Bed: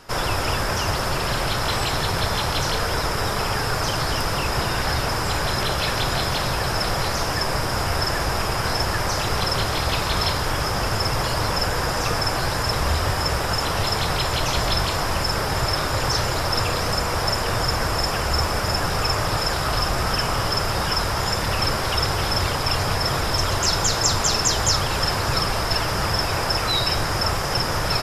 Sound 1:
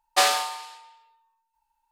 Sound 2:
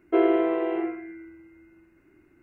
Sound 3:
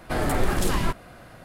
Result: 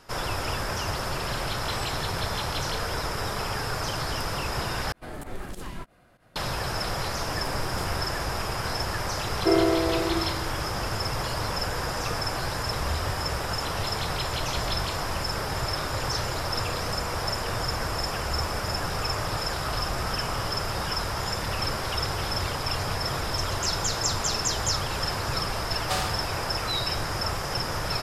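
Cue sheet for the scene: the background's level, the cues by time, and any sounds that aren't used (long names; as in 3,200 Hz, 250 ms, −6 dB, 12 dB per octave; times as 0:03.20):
bed −6.5 dB
0:04.92: overwrite with 3 −13 dB + fake sidechain pumping 96 BPM, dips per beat 2, −15 dB, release 86 ms
0:07.16: mix in 3 −14 dB
0:09.33: mix in 2 −1 dB
0:25.73: mix in 1 −10 dB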